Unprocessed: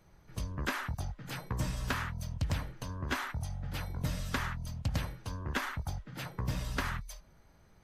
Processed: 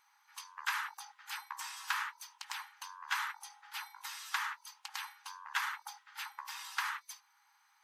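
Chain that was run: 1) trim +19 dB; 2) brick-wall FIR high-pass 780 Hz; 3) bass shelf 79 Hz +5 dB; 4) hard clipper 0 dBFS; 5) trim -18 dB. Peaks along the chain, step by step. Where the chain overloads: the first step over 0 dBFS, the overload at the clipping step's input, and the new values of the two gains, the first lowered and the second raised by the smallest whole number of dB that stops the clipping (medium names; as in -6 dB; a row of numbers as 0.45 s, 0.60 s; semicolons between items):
-5.0 dBFS, -2.5 dBFS, -2.5 dBFS, -2.5 dBFS, -20.5 dBFS; nothing clips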